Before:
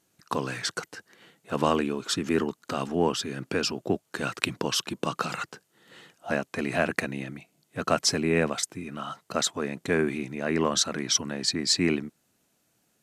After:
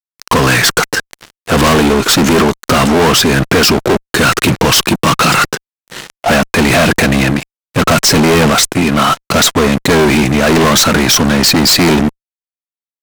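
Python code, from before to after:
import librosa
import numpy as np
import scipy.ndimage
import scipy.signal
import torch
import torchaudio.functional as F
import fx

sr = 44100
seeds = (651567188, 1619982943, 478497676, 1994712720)

y = fx.fuzz(x, sr, gain_db=39.0, gate_db=-48.0)
y = F.gain(torch.from_numpy(y), 6.0).numpy()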